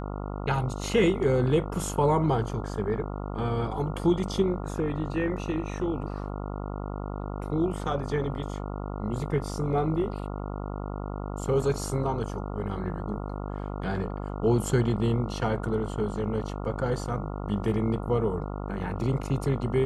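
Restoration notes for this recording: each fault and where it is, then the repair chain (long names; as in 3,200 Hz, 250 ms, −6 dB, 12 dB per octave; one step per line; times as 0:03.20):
mains buzz 50 Hz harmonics 28 −34 dBFS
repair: hum removal 50 Hz, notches 28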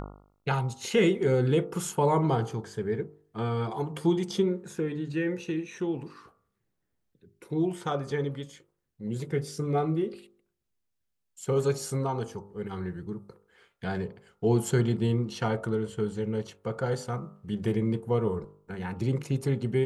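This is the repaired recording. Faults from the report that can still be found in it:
none of them is left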